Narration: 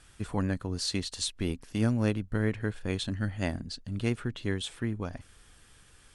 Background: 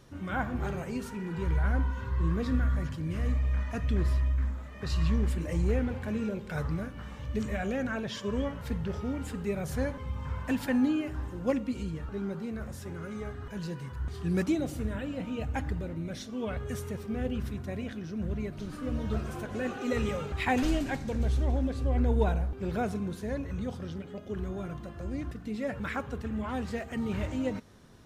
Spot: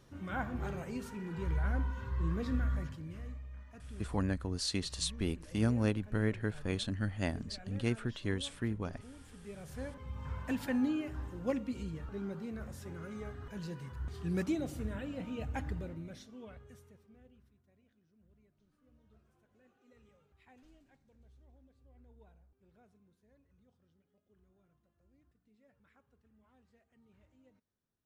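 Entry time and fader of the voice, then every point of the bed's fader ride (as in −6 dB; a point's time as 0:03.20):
3.80 s, −3.5 dB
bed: 0:02.77 −5.5 dB
0:03.48 −19.5 dB
0:09.22 −19.5 dB
0:10.27 −5.5 dB
0:15.83 −5.5 dB
0:17.59 −35 dB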